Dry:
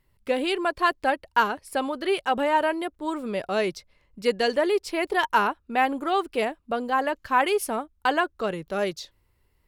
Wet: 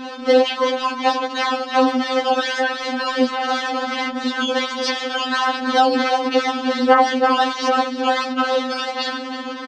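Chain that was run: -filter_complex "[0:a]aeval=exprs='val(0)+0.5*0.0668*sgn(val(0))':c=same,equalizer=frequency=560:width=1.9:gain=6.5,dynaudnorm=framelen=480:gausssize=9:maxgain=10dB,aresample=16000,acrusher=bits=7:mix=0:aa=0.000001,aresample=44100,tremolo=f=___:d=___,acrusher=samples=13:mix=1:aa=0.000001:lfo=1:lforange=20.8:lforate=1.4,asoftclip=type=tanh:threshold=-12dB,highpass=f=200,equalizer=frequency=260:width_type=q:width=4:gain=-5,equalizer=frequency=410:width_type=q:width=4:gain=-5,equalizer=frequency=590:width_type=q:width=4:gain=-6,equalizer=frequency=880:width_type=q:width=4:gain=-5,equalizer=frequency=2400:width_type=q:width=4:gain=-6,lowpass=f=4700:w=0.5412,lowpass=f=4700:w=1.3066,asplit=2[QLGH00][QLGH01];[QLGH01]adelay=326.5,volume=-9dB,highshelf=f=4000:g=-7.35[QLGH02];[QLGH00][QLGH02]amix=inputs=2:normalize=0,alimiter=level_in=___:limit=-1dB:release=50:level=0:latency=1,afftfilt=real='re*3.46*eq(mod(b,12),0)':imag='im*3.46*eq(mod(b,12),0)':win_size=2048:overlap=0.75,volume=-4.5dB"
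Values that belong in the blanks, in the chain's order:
230, 0.974, 18dB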